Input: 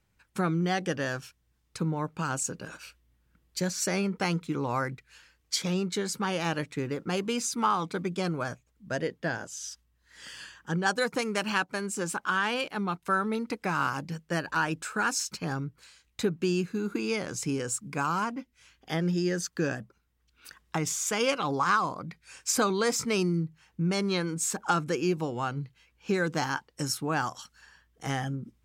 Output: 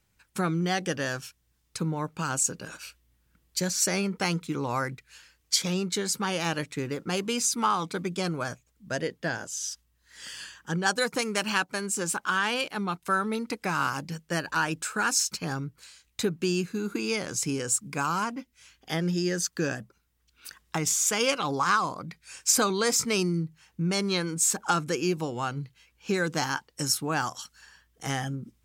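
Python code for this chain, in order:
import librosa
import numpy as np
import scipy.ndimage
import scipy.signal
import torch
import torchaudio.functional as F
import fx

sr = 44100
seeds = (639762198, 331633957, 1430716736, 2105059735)

y = fx.high_shelf(x, sr, hz=3500.0, db=7.5)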